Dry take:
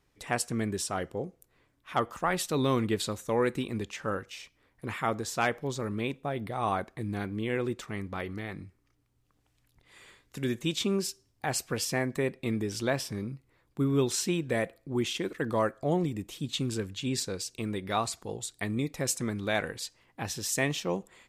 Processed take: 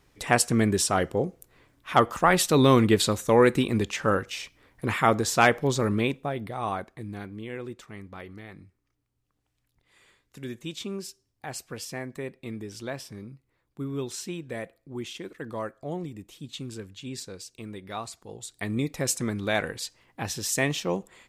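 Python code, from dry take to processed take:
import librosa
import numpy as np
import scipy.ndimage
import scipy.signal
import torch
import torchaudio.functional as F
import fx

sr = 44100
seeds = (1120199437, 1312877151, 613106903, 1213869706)

y = fx.gain(x, sr, db=fx.line((5.92, 8.5), (6.4, 1.0), (7.52, -6.0), (18.26, -6.0), (18.76, 3.0)))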